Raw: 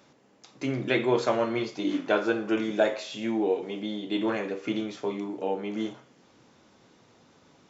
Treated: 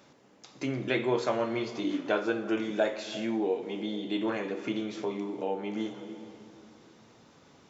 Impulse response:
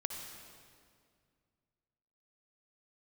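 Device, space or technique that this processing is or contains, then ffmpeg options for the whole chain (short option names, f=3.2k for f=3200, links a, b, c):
ducked reverb: -filter_complex "[0:a]asplit=3[a][b][c];[1:a]atrim=start_sample=2205[d];[b][d]afir=irnorm=-1:irlink=0[e];[c]apad=whole_len=339136[f];[e][f]sidechaincompress=threshold=-36dB:ratio=8:attack=32:release=285,volume=0.5dB[g];[a][g]amix=inputs=2:normalize=0,volume=-5dB"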